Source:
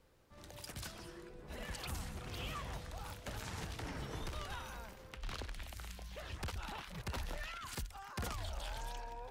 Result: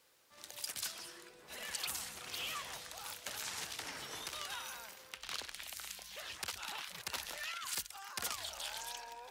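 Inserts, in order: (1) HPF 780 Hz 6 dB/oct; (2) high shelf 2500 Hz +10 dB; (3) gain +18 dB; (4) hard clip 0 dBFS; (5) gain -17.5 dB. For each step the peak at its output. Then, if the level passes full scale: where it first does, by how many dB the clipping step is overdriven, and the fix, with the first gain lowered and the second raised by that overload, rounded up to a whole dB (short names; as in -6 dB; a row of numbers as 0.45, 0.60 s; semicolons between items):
-31.0, -24.0, -6.0, -6.0, -23.5 dBFS; no overload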